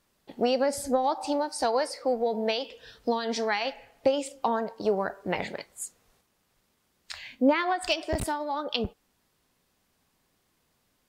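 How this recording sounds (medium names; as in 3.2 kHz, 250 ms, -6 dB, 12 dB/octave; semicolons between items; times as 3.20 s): noise floor -73 dBFS; spectral tilt -3.5 dB/octave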